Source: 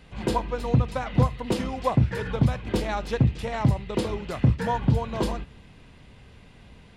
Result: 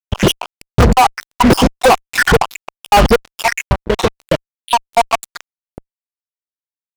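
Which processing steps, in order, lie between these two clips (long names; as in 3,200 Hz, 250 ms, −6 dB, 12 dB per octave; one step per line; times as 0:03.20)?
time-frequency cells dropped at random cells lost 81%
downward expander −48 dBFS
high-shelf EQ 3,600 Hz −4 dB
0:03.56–0:04.89: downward compressor 4 to 1, threshold −41 dBFS, peak gain reduction 16.5 dB
low-shelf EQ 82 Hz −5 dB
fuzz pedal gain 42 dB, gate −46 dBFS
level +7.5 dB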